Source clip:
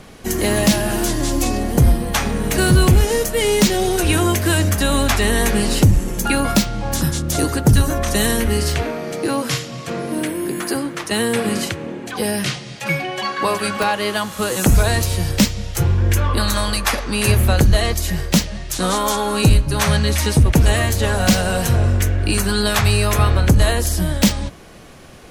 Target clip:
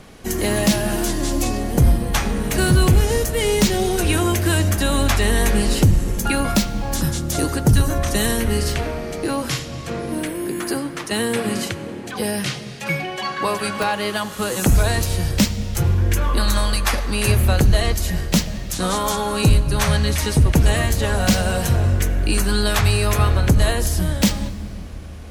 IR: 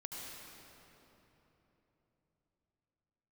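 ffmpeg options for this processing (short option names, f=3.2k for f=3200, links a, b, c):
-filter_complex "[0:a]asplit=2[a][b];[1:a]atrim=start_sample=2205,lowshelf=f=130:g=9.5[c];[b][c]afir=irnorm=-1:irlink=0,volume=-12.5dB[d];[a][d]amix=inputs=2:normalize=0,volume=-3.5dB"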